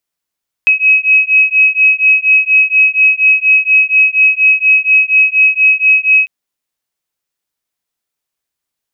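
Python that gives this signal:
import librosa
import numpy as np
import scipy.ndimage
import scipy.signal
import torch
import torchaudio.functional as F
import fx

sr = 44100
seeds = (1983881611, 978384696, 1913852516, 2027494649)

y = fx.two_tone_beats(sr, length_s=5.6, hz=2550.0, beat_hz=4.2, level_db=-9.5)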